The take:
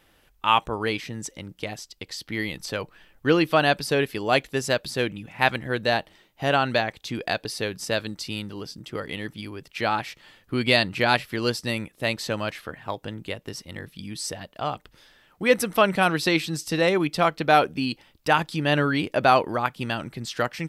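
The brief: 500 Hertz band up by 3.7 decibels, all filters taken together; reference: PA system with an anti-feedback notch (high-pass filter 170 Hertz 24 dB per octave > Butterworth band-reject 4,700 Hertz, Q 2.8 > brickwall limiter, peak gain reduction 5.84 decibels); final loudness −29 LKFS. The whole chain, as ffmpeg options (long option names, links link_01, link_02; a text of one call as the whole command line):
ffmpeg -i in.wav -af "highpass=frequency=170:width=0.5412,highpass=frequency=170:width=1.3066,asuperstop=centerf=4700:order=8:qfactor=2.8,equalizer=frequency=500:width_type=o:gain=4.5,volume=-4.5dB,alimiter=limit=-12dB:level=0:latency=1" out.wav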